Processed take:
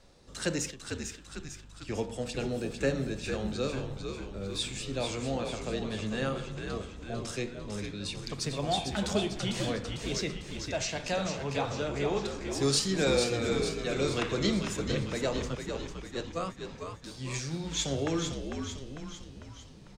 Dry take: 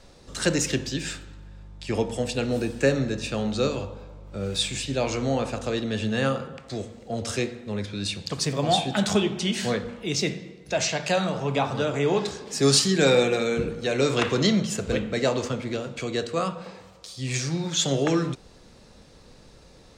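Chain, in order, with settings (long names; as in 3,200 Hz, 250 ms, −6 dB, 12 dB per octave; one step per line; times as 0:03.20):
0:00.70–0:01.88: downward compressor 10 to 1, threshold −38 dBFS, peak gain reduction 18.5 dB
0:15.55–0:16.65: noise gate −26 dBFS, range −18 dB
echo with shifted repeats 449 ms, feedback 55%, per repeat −74 Hz, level −6 dB
level −8 dB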